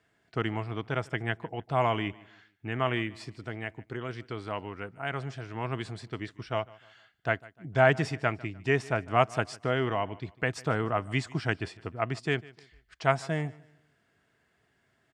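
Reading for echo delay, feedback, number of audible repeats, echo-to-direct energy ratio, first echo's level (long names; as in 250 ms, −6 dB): 150 ms, 36%, 2, −21.5 dB, −22.0 dB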